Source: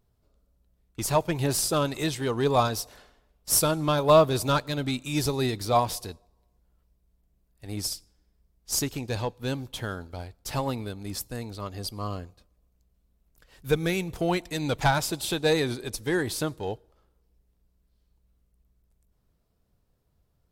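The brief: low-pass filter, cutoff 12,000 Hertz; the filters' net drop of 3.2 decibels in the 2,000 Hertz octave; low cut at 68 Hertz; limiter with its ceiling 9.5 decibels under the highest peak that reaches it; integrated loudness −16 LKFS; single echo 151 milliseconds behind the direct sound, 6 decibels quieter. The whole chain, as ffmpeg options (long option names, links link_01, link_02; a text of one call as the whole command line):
ffmpeg -i in.wav -af "highpass=68,lowpass=12000,equalizer=frequency=2000:width_type=o:gain=-4.5,alimiter=limit=-17dB:level=0:latency=1,aecho=1:1:151:0.501,volume=13dB" out.wav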